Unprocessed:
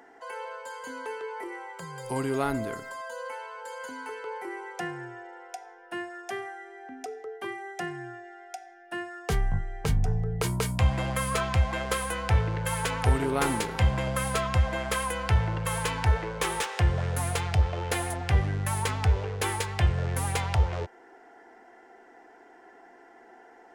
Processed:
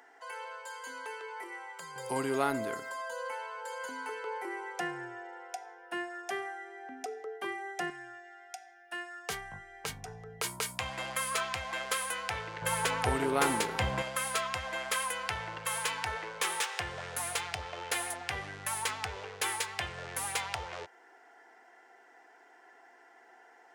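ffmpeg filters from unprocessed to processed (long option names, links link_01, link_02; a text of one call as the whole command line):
ffmpeg -i in.wav -af "asetnsamples=nb_out_samples=441:pad=0,asendcmd='1.96 highpass f 360;7.9 highpass f 1400;12.62 highpass f 330;14.02 highpass f 1300',highpass=frequency=1200:poles=1" out.wav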